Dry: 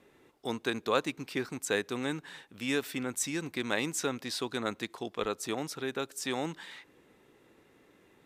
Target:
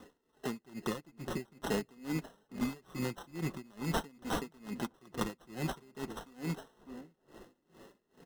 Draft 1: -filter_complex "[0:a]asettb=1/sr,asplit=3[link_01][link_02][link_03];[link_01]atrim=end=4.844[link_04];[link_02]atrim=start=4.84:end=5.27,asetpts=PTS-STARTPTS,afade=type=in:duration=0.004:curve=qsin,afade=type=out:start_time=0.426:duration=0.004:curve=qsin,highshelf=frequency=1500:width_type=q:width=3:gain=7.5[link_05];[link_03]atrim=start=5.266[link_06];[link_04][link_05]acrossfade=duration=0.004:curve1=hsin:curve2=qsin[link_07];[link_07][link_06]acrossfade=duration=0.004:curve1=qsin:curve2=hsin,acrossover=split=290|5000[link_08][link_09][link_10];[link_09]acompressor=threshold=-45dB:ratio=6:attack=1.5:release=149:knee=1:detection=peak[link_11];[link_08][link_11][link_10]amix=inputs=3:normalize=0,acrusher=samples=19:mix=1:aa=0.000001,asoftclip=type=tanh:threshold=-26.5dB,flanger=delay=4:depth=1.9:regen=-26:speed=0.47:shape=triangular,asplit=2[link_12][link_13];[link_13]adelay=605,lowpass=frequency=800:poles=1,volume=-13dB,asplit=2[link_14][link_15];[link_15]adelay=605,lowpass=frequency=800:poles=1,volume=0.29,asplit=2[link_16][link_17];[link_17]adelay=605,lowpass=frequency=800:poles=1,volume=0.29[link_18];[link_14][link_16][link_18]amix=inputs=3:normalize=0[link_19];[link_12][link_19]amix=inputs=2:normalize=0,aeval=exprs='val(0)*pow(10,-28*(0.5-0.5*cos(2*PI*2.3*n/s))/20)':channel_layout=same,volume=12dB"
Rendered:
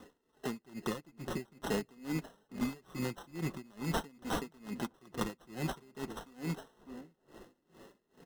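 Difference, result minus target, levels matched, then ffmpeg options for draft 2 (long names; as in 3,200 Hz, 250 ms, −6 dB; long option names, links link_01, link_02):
soft clipping: distortion +11 dB
-filter_complex "[0:a]asettb=1/sr,asplit=3[link_01][link_02][link_03];[link_01]atrim=end=4.844[link_04];[link_02]atrim=start=4.84:end=5.27,asetpts=PTS-STARTPTS,afade=type=in:duration=0.004:curve=qsin,afade=type=out:start_time=0.426:duration=0.004:curve=qsin,highshelf=frequency=1500:width_type=q:width=3:gain=7.5[link_05];[link_03]atrim=start=5.266[link_06];[link_04][link_05]acrossfade=duration=0.004:curve1=hsin:curve2=qsin[link_07];[link_07][link_06]acrossfade=duration=0.004:curve1=qsin:curve2=hsin,acrossover=split=290|5000[link_08][link_09][link_10];[link_09]acompressor=threshold=-45dB:ratio=6:attack=1.5:release=149:knee=1:detection=peak[link_11];[link_08][link_11][link_10]amix=inputs=3:normalize=0,acrusher=samples=19:mix=1:aa=0.000001,asoftclip=type=tanh:threshold=-19.5dB,flanger=delay=4:depth=1.9:regen=-26:speed=0.47:shape=triangular,asplit=2[link_12][link_13];[link_13]adelay=605,lowpass=frequency=800:poles=1,volume=-13dB,asplit=2[link_14][link_15];[link_15]adelay=605,lowpass=frequency=800:poles=1,volume=0.29,asplit=2[link_16][link_17];[link_17]adelay=605,lowpass=frequency=800:poles=1,volume=0.29[link_18];[link_14][link_16][link_18]amix=inputs=3:normalize=0[link_19];[link_12][link_19]amix=inputs=2:normalize=0,aeval=exprs='val(0)*pow(10,-28*(0.5-0.5*cos(2*PI*2.3*n/s))/20)':channel_layout=same,volume=12dB"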